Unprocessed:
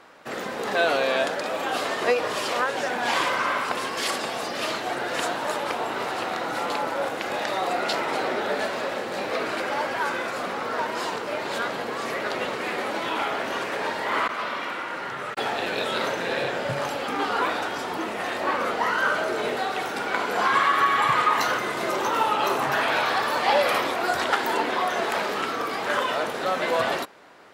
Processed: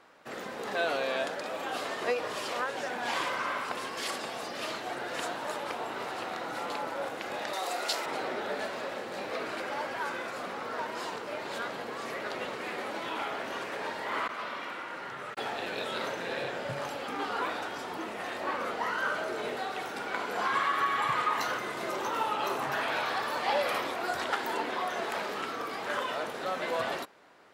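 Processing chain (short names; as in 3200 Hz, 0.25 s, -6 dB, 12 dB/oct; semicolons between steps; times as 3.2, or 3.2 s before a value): 7.53–8.06 tone controls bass -13 dB, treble +11 dB; gain -8 dB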